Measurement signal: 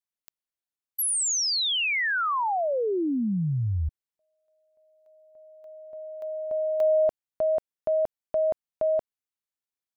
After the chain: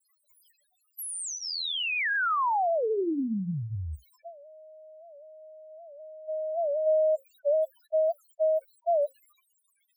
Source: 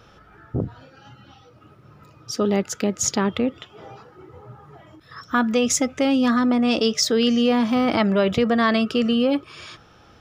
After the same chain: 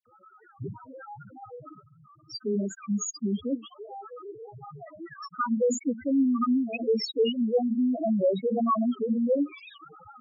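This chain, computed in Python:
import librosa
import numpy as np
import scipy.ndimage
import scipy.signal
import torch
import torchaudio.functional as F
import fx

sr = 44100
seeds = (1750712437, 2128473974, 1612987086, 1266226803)

y = x + 0.5 * 10.0 ** (-29.5 / 20.0) * np.sign(x)
y = fx.notch(y, sr, hz=5900.0, q=8.8)
y = fx.dereverb_blind(y, sr, rt60_s=0.54)
y = fx.low_shelf(y, sr, hz=140.0, db=-10.0)
y = fx.hum_notches(y, sr, base_hz=60, count=9)
y = fx.gate_hold(y, sr, open_db=-29.0, close_db=-36.0, hold_ms=167.0, range_db=-10, attack_ms=1.4, release_ms=77.0)
y = fx.spec_topn(y, sr, count=2)
y = fx.dispersion(y, sr, late='lows', ms=67.0, hz=2800.0)
y = fx.record_warp(y, sr, rpm=78.0, depth_cents=160.0)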